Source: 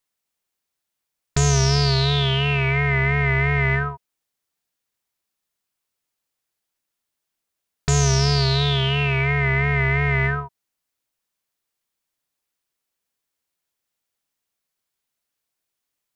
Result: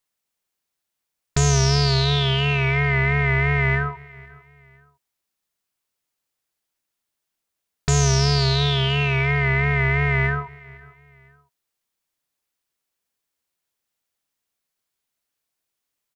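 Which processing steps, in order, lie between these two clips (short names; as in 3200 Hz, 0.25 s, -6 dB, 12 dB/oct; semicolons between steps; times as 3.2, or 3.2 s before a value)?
feedback echo 0.505 s, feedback 36%, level -23 dB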